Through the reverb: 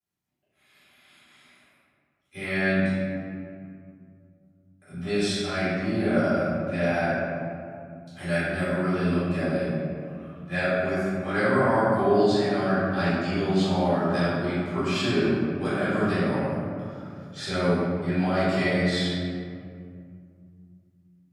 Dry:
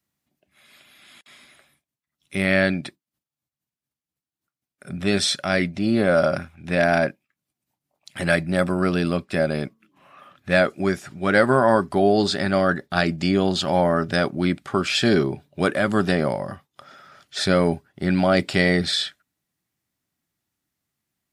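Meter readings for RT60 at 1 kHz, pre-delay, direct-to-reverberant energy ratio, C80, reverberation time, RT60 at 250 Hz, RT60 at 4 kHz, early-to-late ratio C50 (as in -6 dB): 2.2 s, 3 ms, -14.5 dB, -1.0 dB, 2.3 s, 3.2 s, 1.2 s, -4.0 dB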